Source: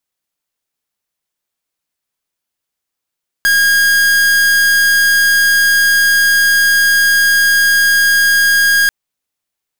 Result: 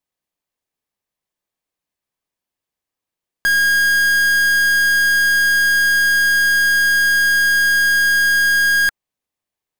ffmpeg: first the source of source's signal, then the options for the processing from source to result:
-f lavfi -i "aevalsrc='0.299*(2*lt(mod(1630*t,1),0.45)-1)':d=5.44:s=44100"
-af "highshelf=f=2200:g=-8,bandreject=f=1400:w=8.9"

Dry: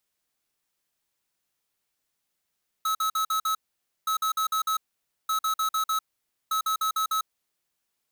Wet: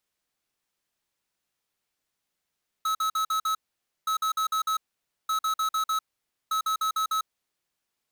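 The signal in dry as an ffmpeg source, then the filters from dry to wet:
-f lavfi -i "aevalsrc='0.0531*(2*lt(mod(1290*t,1),0.5)-1)*clip(min(mod(mod(t,1.22),0.15),0.1-mod(mod(t,1.22),0.15))/0.005,0,1)*lt(mod(t,1.22),0.75)':d=4.88:s=44100"
-af "highshelf=f=7900:g=-6"

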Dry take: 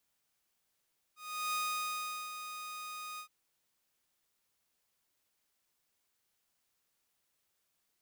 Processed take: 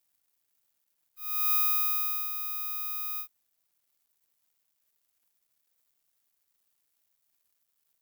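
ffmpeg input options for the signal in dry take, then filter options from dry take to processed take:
-f lavfi -i "aevalsrc='0.0335*(2*mod(1240*t,1)-1)':d=2.118:s=44100,afade=t=in:d=0.369,afade=t=out:st=0.369:d=0.772:silence=0.335,afade=t=out:st=2.03:d=0.088"
-filter_complex "[0:a]equalizer=f=330:w=0.87:g=-7,acrossover=split=410[s0][s1];[s1]aexciter=amount=13.1:drive=2.8:freq=11000[s2];[s0][s2]amix=inputs=2:normalize=0,aeval=exprs='sgn(val(0))*max(abs(val(0))-0.00168,0)':c=same"

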